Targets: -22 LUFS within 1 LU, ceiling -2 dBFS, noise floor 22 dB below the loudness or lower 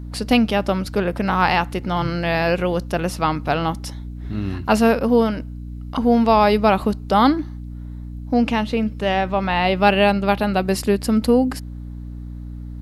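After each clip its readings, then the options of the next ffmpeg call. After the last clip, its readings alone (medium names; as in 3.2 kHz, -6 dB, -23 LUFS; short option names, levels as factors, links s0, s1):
hum 60 Hz; highest harmonic 300 Hz; hum level -29 dBFS; loudness -19.0 LUFS; peak level -2.5 dBFS; loudness target -22.0 LUFS
-> -af "bandreject=f=60:t=h:w=4,bandreject=f=120:t=h:w=4,bandreject=f=180:t=h:w=4,bandreject=f=240:t=h:w=4,bandreject=f=300:t=h:w=4"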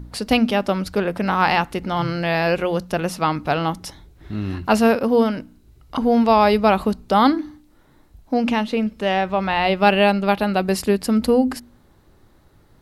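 hum not found; loudness -19.5 LUFS; peak level -3.0 dBFS; loudness target -22.0 LUFS
-> -af "volume=0.75"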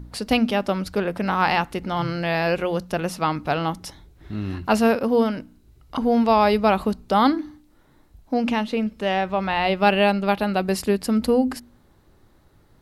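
loudness -22.0 LUFS; peak level -5.5 dBFS; noise floor -57 dBFS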